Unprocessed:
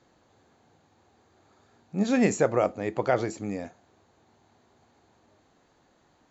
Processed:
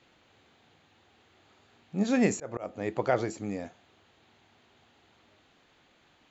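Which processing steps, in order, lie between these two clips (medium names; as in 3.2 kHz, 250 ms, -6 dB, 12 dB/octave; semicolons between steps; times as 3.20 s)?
band noise 1.1–3.9 kHz -66 dBFS; 2.31–2.88 s: slow attack 249 ms; trim -2 dB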